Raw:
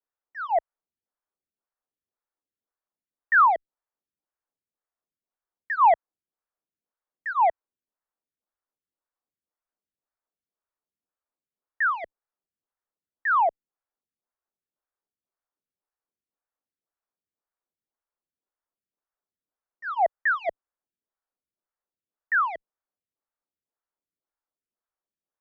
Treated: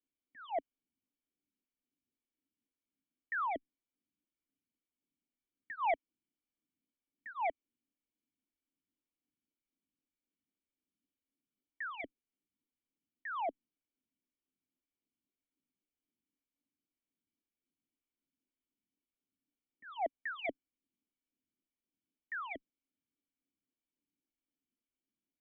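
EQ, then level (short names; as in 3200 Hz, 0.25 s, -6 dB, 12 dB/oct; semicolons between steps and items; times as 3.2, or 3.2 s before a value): vocal tract filter i; +13.5 dB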